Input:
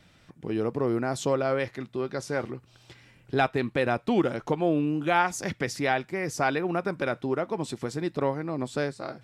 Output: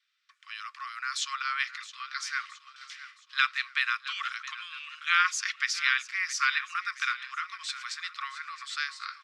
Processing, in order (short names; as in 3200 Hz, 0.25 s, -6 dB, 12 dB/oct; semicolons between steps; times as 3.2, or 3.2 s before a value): Chebyshev low-pass 4500 Hz, order 2; gate with hold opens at -45 dBFS; Chebyshev high-pass 1100 Hz, order 8; high shelf 2200 Hz +8.5 dB; on a send: feedback echo 0.668 s, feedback 46%, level -15 dB; on the sum: gain +2.5 dB